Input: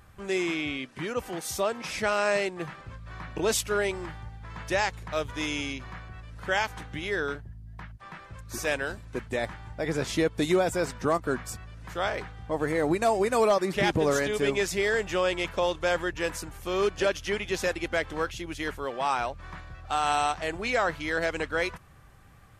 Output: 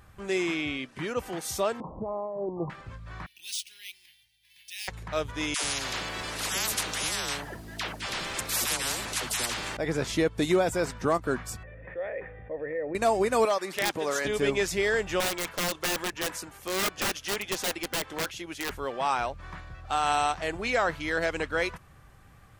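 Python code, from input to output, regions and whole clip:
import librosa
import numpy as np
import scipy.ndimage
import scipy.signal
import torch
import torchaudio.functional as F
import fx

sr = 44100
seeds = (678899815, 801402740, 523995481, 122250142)

y = fx.chain(x, sr, fx.steep_lowpass(hz=1100.0, slope=96),
    fx.over_compress(threshold_db=-32.0, ratio=-1.0), at=(1.8, 2.7))
y = fx.chain(y, sr, fx.cheby2_highpass(hz=1400.0, order=4, stop_db=40),
    fx.high_shelf(hz=10000.0, db=-12.0),
    fx.resample_bad(factor=3, down='filtered', up='hold'), at=(3.26, 4.88))
y = fx.chain(y, sr, fx.dispersion(late='lows', ms=98.0, hz=600.0),
    fx.spectral_comp(ratio=10.0), at=(5.54, 9.77))
y = fx.chain(y, sr, fx.formant_cascade(vowel='e'),
    fx.env_flatten(amount_pct=50), at=(11.63, 12.95))
y = fx.chain(y, sr, fx.highpass(hz=780.0, slope=6),
    fx.overflow_wrap(gain_db=16.0), at=(13.45, 14.25))
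y = fx.chain(y, sr, fx.highpass(hz=290.0, slope=6),
    fx.overflow_wrap(gain_db=23.0), at=(15.2, 18.7))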